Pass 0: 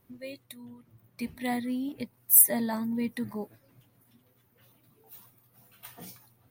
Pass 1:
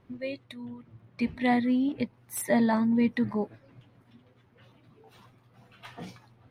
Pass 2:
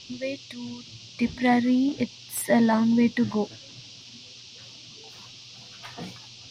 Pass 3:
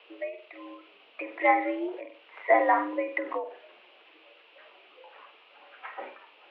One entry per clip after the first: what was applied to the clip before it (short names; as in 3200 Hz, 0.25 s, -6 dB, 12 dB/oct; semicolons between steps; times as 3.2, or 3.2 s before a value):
LPF 3400 Hz 12 dB/oct; gain +6.5 dB
band noise 2600–5800 Hz -50 dBFS; gain +3.5 dB
mistuned SSB +75 Hz 380–2300 Hz; flutter echo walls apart 8.1 m, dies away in 0.3 s; ending taper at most 110 dB/s; gain +3.5 dB